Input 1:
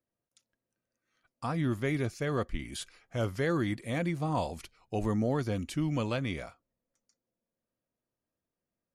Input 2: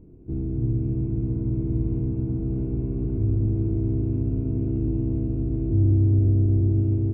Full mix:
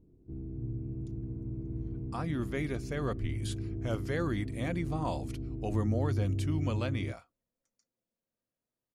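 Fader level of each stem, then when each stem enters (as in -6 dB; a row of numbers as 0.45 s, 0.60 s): -3.5 dB, -13.0 dB; 0.70 s, 0.00 s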